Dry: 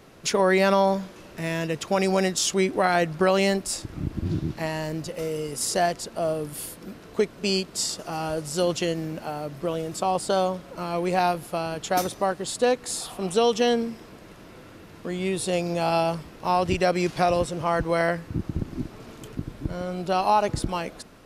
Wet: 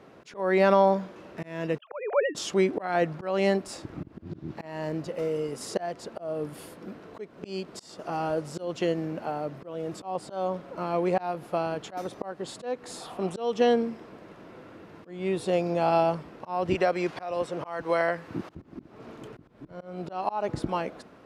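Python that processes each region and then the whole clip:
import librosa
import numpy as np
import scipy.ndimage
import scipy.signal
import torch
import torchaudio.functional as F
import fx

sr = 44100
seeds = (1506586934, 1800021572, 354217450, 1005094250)

y = fx.chain(x, sr, fx.sine_speech(),
    fx.low_shelf(hz=490.0, db=-5.0),
    fx.band_widen(depth_pct=70), at=(1.78, 2.35))
y = fx.chain(y, sr, fx.low_shelf(hz=360.0, db=-10.5),
    fx.band_squash(depth_pct=70), at=(16.75, 18.55))
y = fx.highpass(y, sr, hz=260.0, slope=6)
y = fx.auto_swell(y, sr, attack_ms=266.0)
y = fx.lowpass(y, sr, hz=1200.0, slope=6)
y = F.gain(torch.from_numpy(y), 2.5).numpy()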